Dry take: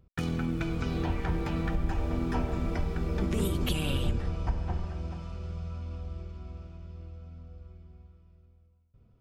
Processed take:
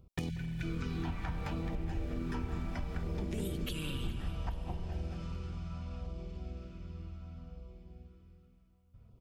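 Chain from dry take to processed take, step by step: LFO notch saw down 0.66 Hz 310–1800 Hz; compression, threshold -35 dBFS, peak gain reduction 12.5 dB; spectral selection erased 0.30–0.63 s, 210–1400 Hz; feedback delay 417 ms, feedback 49%, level -16.5 dB; on a send at -10 dB: reverberation RT60 1.8 s, pre-delay 186 ms; on the sum: trim +2 dB

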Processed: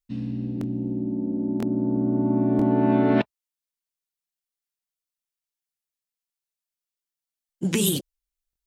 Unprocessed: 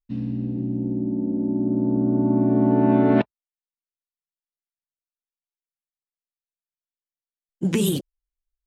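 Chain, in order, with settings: treble shelf 2.3 kHz +8.5 dB; crackling interface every 0.99 s, samples 1024, repeat, from 0.59 s; trim -2.5 dB

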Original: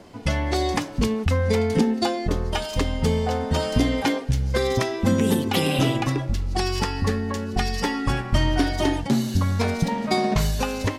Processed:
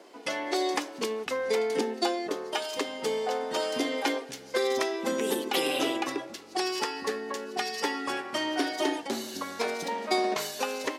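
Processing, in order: Chebyshev high-pass 340 Hz, order 3; trim -3 dB

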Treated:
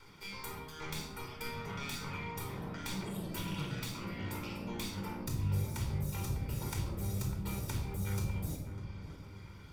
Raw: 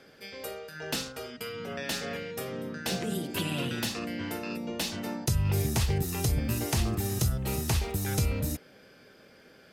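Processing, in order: comb filter that takes the minimum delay 0.86 ms; reverb removal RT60 0.83 s; compression 4:1, threshold -40 dBFS, peak gain reduction 14 dB; on a send: filtered feedback delay 600 ms, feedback 45%, low-pass 1.3 kHz, level -9 dB; on the sum: simulated room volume 2400 m³, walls furnished, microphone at 4.6 m; trim -3 dB

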